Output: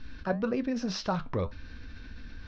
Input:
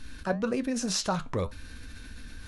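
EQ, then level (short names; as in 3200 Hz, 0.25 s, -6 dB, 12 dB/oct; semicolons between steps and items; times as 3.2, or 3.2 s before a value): synth low-pass 5600 Hz, resonance Q 4; air absorption 350 m; 0.0 dB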